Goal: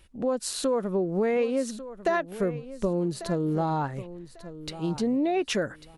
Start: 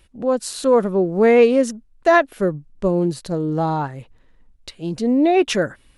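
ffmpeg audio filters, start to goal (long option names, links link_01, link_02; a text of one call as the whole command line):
ffmpeg -i in.wav -af "acompressor=threshold=-21dB:ratio=6,aecho=1:1:1145|2290:0.188|0.0433,volume=-2dB" out.wav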